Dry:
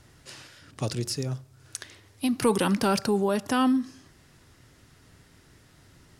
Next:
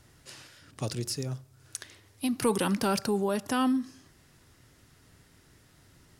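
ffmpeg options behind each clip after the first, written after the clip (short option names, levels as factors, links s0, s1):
-af "highshelf=f=11000:g=7,volume=0.668"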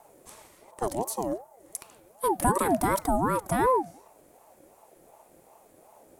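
-af "tiltshelf=f=1200:g=7,aexciter=amount=6.3:drive=2.7:freq=7100,aeval=exprs='val(0)*sin(2*PI*600*n/s+600*0.3/2.7*sin(2*PI*2.7*n/s))':c=same"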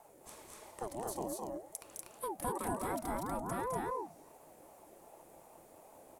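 -af "acompressor=threshold=0.0141:ratio=2.5,aecho=1:1:209.9|242:0.562|0.794,volume=0.596"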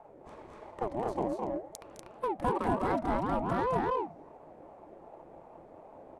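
-af "adynamicsmooth=sensitivity=6:basefreq=1500,volume=2.51"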